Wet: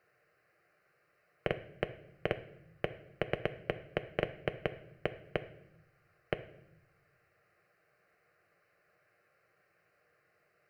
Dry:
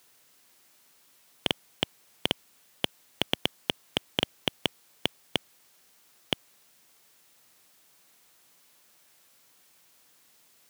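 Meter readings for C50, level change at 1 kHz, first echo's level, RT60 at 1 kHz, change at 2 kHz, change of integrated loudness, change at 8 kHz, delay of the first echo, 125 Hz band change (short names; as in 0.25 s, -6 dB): 14.5 dB, -4.0 dB, none, 0.70 s, -4.0 dB, -7.0 dB, under -25 dB, none, 0.0 dB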